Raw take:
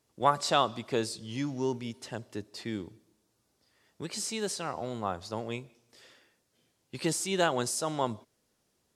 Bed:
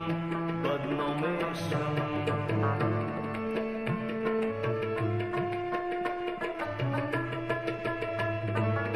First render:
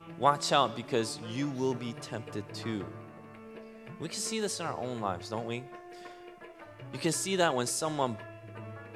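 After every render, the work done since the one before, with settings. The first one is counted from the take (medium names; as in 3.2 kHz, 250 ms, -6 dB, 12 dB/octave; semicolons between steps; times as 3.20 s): add bed -15.5 dB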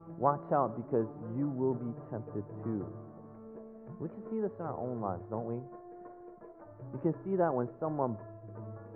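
Bessel low-pass 800 Hz, order 6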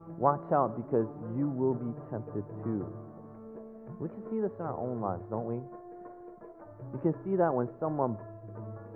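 trim +2.5 dB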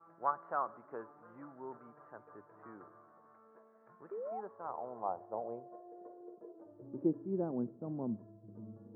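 band-pass sweep 1.4 kHz -> 220 Hz, 4.01–7.67 s; 4.11–4.41 s: painted sound rise 380–850 Hz -41 dBFS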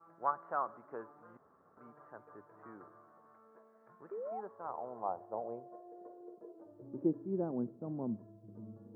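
1.37–1.77 s: room tone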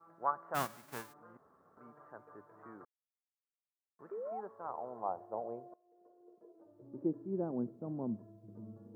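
0.54–1.12 s: formants flattened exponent 0.3; 2.85–3.99 s: mute; 5.74–7.58 s: fade in, from -23.5 dB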